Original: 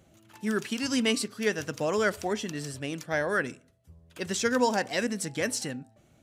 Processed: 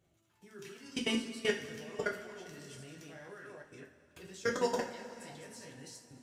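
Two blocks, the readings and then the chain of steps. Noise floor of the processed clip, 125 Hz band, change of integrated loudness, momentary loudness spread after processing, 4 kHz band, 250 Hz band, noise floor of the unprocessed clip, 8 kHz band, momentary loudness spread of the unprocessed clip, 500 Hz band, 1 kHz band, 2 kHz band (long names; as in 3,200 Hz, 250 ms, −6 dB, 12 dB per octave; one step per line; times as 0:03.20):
−73 dBFS, −12.0 dB, −8.5 dB, 18 LU, −8.0 dB, −11.0 dB, −62 dBFS, −13.5 dB, 10 LU, −8.5 dB, −10.5 dB, −10.0 dB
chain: delay that plays each chunk backwards 213 ms, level −3 dB
output level in coarse steps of 23 dB
coupled-rooms reverb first 0.33 s, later 3.2 s, from −18 dB, DRR −1.5 dB
level −7.5 dB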